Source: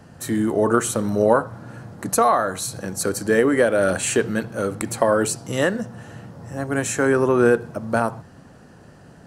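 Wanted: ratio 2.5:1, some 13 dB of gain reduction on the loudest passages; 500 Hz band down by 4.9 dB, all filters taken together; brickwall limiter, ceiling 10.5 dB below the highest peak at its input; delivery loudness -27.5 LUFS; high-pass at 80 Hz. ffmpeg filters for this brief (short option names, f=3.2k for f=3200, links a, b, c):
-af "highpass=80,equalizer=f=500:t=o:g=-6,acompressor=threshold=-35dB:ratio=2.5,volume=8dB,alimiter=limit=-16dB:level=0:latency=1"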